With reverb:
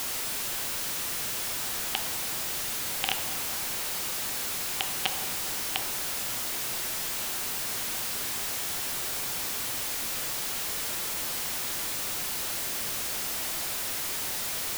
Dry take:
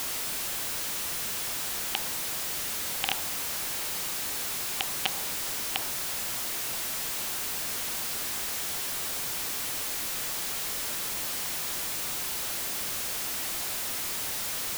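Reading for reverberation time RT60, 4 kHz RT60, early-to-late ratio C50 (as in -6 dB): 2.4 s, 1.3 s, 8.5 dB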